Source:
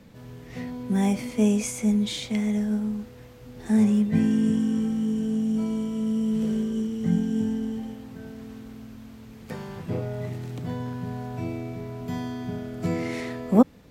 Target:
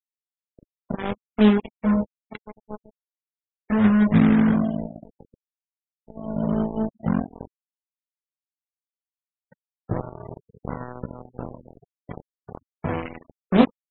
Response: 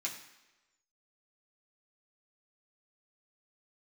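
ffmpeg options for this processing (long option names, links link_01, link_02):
-filter_complex "[0:a]aecho=1:1:61|122:0.106|0.0297,asplit=2[link_01][link_02];[1:a]atrim=start_sample=2205,asetrate=38367,aresample=44100,lowpass=2500[link_03];[link_02][link_03]afir=irnorm=-1:irlink=0,volume=-9dB[link_04];[link_01][link_04]amix=inputs=2:normalize=0,flanger=delay=16:depth=5.7:speed=0.18,lowshelf=frequency=200:gain=5,aresample=8000,acrusher=bits=3:mix=0:aa=0.5,aresample=44100,aeval=exprs='0.596*(cos(1*acos(clip(val(0)/0.596,-1,1)))-cos(1*PI/2))+0.0211*(cos(7*acos(clip(val(0)/0.596,-1,1)))-cos(7*PI/2))':channel_layout=same,adynamicequalizer=threshold=0.01:dfrequency=1100:dqfactor=0.97:tfrequency=1100:tqfactor=0.97:attack=5:release=100:ratio=0.375:range=1.5:mode=cutabove:tftype=bell,afftfilt=real='re*gte(hypot(re,im),0.0141)':imag='im*gte(hypot(re,im),0.0141)':win_size=1024:overlap=0.75,volume=3.5dB"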